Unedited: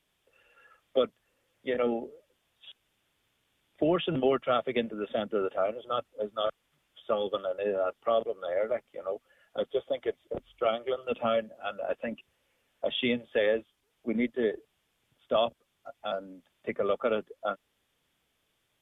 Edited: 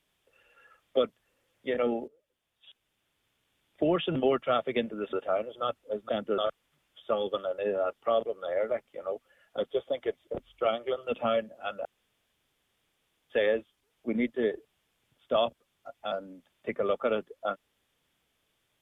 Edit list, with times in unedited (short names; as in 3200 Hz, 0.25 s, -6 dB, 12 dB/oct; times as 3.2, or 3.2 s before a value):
2.08–4.16 fade in equal-power, from -15.5 dB
5.13–5.42 move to 6.38
11.85–13.3 room tone